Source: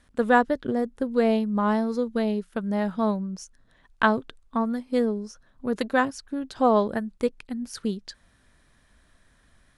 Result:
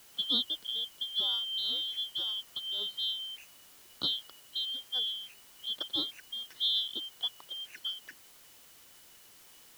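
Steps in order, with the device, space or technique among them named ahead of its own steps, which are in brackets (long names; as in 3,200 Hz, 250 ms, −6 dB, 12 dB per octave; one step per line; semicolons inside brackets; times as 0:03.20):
split-band scrambled radio (band-splitting scrambler in four parts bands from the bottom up 2413; band-pass filter 320–3,400 Hz; white noise bed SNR 20 dB)
level −7.5 dB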